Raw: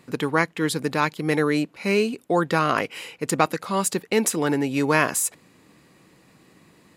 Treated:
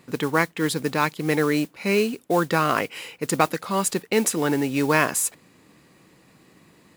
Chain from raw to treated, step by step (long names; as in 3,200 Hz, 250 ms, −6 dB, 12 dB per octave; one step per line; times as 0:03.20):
noise that follows the level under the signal 20 dB